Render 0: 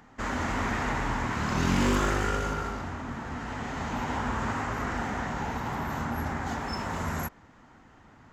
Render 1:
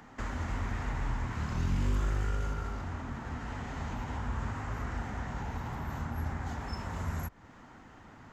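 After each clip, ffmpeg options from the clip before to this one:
-filter_complex "[0:a]acrossover=split=120[s0][s1];[s1]acompressor=threshold=0.00708:ratio=4[s2];[s0][s2]amix=inputs=2:normalize=0,volume=1.26"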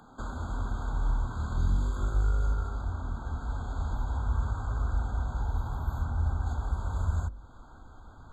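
-af "bandreject=f=48.68:t=h:w=4,bandreject=f=97.36:t=h:w=4,bandreject=f=146.04:t=h:w=4,bandreject=f=194.72:t=h:w=4,bandreject=f=243.4:t=h:w=4,bandreject=f=292.08:t=h:w=4,bandreject=f=340.76:t=h:w=4,bandreject=f=389.44:t=h:w=4,bandreject=f=438.12:t=h:w=4,bandreject=f=486.8:t=h:w=4,bandreject=f=535.48:t=h:w=4,bandreject=f=584.16:t=h:w=4,bandreject=f=632.84:t=h:w=4,asubboost=boost=6.5:cutoff=68,afftfilt=real='re*eq(mod(floor(b*sr/1024/1600),2),0)':imag='im*eq(mod(floor(b*sr/1024/1600),2),0)':win_size=1024:overlap=0.75"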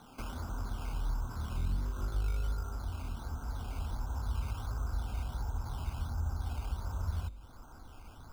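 -filter_complex "[0:a]asplit=2[s0][s1];[s1]acompressor=threshold=0.0126:ratio=6,volume=1.26[s2];[s0][s2]amix=inputs=2:normalize=0,acrusher=samples=9:mix=1:aa=0.000001:lfo=1:lforange=5.4:lforate=1.4,volume=0.376"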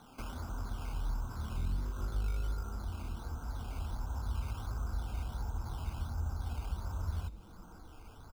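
-filter_complex "[0:a]asplit=5[s0][s1][s2][s3][s4];[s1]adelay=249,afreqshift=-130,volume=0.1[s5];[s2]adelay=498,afreqshift=-260,volume=0.0562[s6];[s3]adelay=747,afreqshift=-390,volume=0.0313[s7];[s4]adelay=996,afreqshift=-520,volume=0.0176[s8];[s0][s5][s6][s7][s8]amix=inputs=5:normalize=0,volume=0.841"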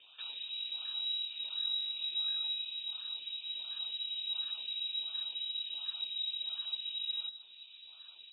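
-af "lowpass=f=3300:t=q:w=0.5098,lowpass=f=3300:t=q:w=0.6013,lowpass=f=3300:t=q:w=0.9,lowpass=f=3300:t=q:w=2.563,afreqshift=-3900,volume=0.75"

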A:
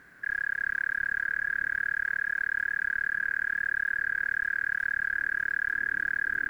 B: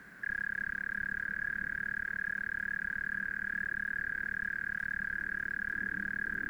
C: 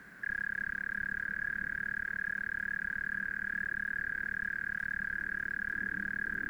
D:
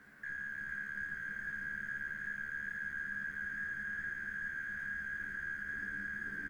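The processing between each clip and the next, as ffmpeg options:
-filter_complex "[0:a]equalizer=f=200:t=o:w=0.24:g=13,acrossover=split=240|420[s0][s1][s2];[s2]alimiter=level_in=1.88:limit=0.0631:level=0:latency=1:release=35,volume=0.531[s3];[s0][s1][s3]amix=inputs=3:normalize=0,volume=1.19"
-af anull
-filter_complex "[0:a]asplit=2[s0][s1];[s1]adelay=14,volume=0.75[s2];[s0][s2]amix=inputs=2:normalize=0,aeval=exprs='0.0562*(cos(1*acos(clip(val(0)/0.0562,-1,1)))-cos(1*PI/2))+0.000794*(cos(8*acos(clip(val(0)/0.0562,-1,1)))-cos(8*PI/2))':c=same,aecho=1:1:453:0.631,volume=0.398"

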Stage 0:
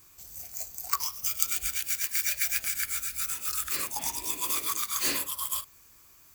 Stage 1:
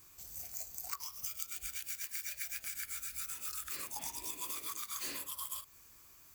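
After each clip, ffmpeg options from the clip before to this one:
-af "acompressor=threshold=0.0178:ratio=6,volume=0.708"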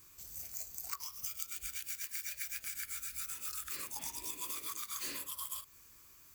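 -af "equalizer=f=740:t=o:w=0.38:g=-7"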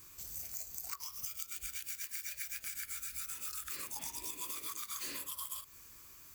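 -af "acompressor=threshold=0.00631:ratio=2.5,volume=1.58"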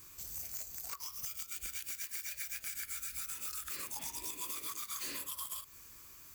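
-af "aeval=exprs='0.0237*(abs(mod(val(0)/0.0237+3,4)-2)-1)':c=same,volume=1.12"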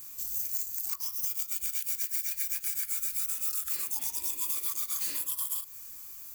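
-af "crystalizer=i=2:c=0,volume=0.794"

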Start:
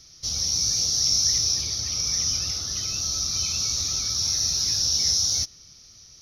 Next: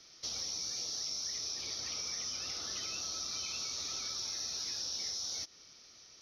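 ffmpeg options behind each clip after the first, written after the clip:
-filter_complex "[0:a]acrossover=split=260 4000:gain=0.112 1 0.224[s0][s1][s2];[s0][s1][s2]amix=inputs=3:normalize=0,acompressor=threshold=0.0158:ratio=6"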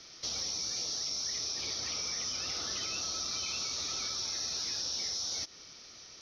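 -filter_complex "[0:a]highshelf=f=9900:g=-11,asplit=2[s0][s1];[s1]alimiter=level_in=4.47:limit=0.0631:level=0:latency=1,volume=0.224,volume=1.41[s2];[s0][s2]amix=inputs=2:normalize=0"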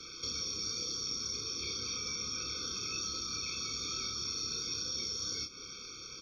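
-filter_complex "[0:a]acrossover=split=410|2100[s0][s1][s2];[s0]acompressor=threshold=0.00158:ratio=4[s3];[s1]acompressor=threshold=0.00141:ratio=4[s4];[s2]acompressor=threshold=0.00794:ratio=4[s5];[s3][s4][s5]amix=inputs=3:normalize=0,aecho=1:1:29|71:0.668|0.168,afftfilt=real='re*eq(mod(floor(b*sr/1024/530),2),0)':imag='im*eq(mod(floor(b*sr/1024/530),2),0)':win_size=1024:overlap=0.75,volume=2"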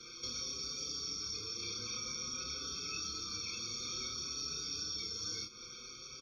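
-filter_complex "[0:a]asplit=2[s0][s1];[s1]adelay=6,afreqshift=0.54[s2];[s0][s2]amix=inputs=2:normalize=1"

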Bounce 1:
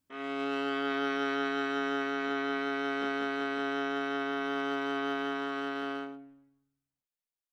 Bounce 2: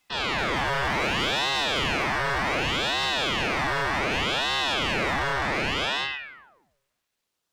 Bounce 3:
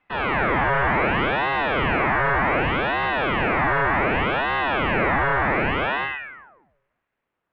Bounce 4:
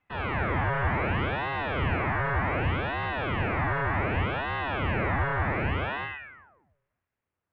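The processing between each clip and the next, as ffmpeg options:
-filter_complex "[0:a]asplit=2[s0][s1];[s1]highpass=f=720:p=1,volume=17.8,asoftclip=type=tanh:threshold=0.106[s2];[s0][s2]amix=inputs=2:normalize=0,lowpass=f=3500:p=1,volume=0.501,aeval=exprs='val(0)*sin(2*PI*1300*n/s+1300*0.8/0.66*sin(2*PI*0.66*n/s))':c=same,volume=1.5"
-af "lowpass=f=2200:w=0.5412,lowpass=f=2200:w=1.3066,volume=2"
-af "equalizer=f=87:w=1.1:g=13.5,volume=0.376"

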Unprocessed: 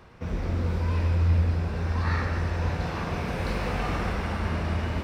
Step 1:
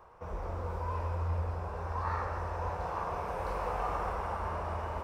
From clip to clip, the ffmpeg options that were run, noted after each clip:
-af "equalizer=f=125:t=o:w=1:g=-7,equalizer=f=250:t=o:w=1:g=-11,equalizer=f=500:t=o:w=1:g=5,equalizer=f=1000:t=o:w=1:g=11,equalizer=f=2000:t=o:w=1:g=-6,equalizer=f=4000:t=o:w=1:g=-9,volume=0.422"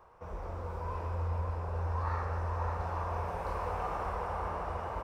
-filter_complex "[0:a]asplit=2[s0][s1];[s1]adelay=543,lowpass=f=2000:p=1,volume=0.631,asplit=2[s2][s3];[s3]adelay=543,lowpass=f=2000:p=1,volume=0.53,asplit=2[s4][s5];[s5]adelay=543,lowpass=f=2000:p=1,volume=0.53,asplit=2[s6][s7];[s7]adelay=543,lowpass=f=2000:p=1,volume=0.53,asplit=2[s8][s9];[s9]adelay=543,lowpass=f=2000:p=1,volume=0.53,asplit=2[s10][s11];[s11]adelay=543,lowpass=f=2000:p=1,volume=0.53,asplit=2[s12][s13];[s13]adelay=543,lowpass=f=2000:p=1,volume=0.53[s14];[s0][s2][s4][s6][s8][s10][s12][s14]amix=inputs=8:normalize=0,volume=0.75"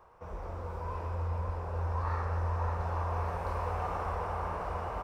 -af "aecho=1:1:1146:0.422"

